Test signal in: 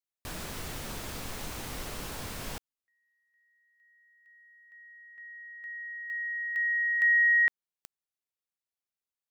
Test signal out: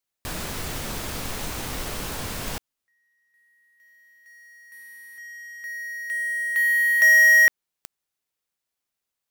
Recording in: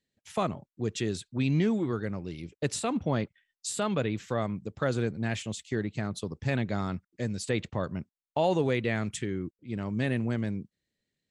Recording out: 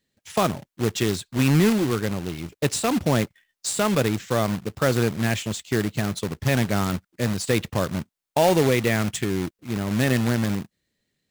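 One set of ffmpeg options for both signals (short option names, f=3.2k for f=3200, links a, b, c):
-af "acontrast=78,acrusher=bits=2:mode=log:mix=0:aa=0.000001"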